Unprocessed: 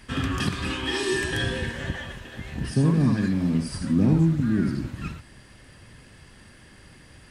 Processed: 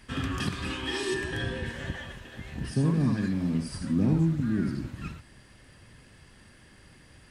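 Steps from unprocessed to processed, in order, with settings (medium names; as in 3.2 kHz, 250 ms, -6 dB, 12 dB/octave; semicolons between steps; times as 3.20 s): 1.14–1.66 s: treble shelf 3.4 kHz -8 dB; trim -4.5 dB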